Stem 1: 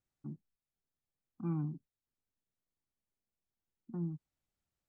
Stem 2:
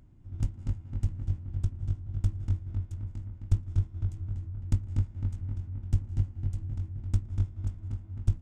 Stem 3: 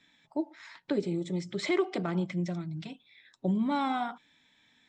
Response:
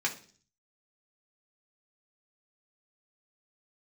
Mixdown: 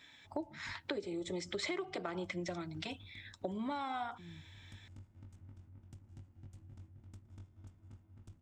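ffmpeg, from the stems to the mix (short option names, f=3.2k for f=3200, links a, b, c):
-filter_complex "[0:a]adelay=250,volume=-10dB[a];[1:a]highpass=f=290:p=1,volume=-9.5dB[b];[2:a]highpass=380,acontrast=90,volume=-1.5dB[c];[a][b]amix=inputs=2:normalize=0,alimiter=level_in=19.5dB:limit=-24dB:level=0:latency=1:release=104,volume=-19.5dB,volume=0dB[d];[c][d]amix=inputs=2:normalize=0,acompressor=threshold=-36dB:ratio=8"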